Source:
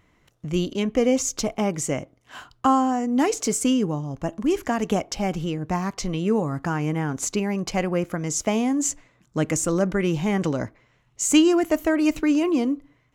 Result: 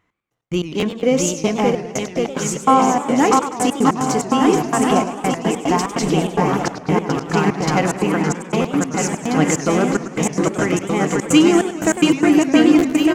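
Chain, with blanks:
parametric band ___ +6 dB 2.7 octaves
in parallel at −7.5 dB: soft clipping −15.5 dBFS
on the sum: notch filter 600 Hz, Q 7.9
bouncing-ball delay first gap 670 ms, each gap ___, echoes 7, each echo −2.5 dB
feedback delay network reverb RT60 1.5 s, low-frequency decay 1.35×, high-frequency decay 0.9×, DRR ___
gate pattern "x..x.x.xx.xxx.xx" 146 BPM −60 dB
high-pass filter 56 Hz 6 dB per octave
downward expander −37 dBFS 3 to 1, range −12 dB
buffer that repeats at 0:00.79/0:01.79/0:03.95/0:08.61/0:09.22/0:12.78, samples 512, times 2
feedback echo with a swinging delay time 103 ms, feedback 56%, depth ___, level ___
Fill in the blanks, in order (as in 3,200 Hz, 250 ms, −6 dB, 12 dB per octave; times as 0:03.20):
1,100 Hz, 0.8×, 16 dB, 218 cents, −11.5 dB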